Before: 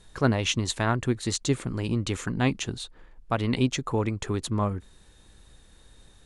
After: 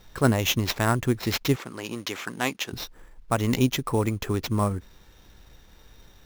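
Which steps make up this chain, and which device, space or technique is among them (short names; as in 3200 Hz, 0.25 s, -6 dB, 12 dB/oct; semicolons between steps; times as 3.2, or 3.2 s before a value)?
early companding sampler (sample-rate reducer 9400 Hz, jitter 0%; companded quantiser 8-bit); 1.56–2.73 weighting filter A; gain +2 dB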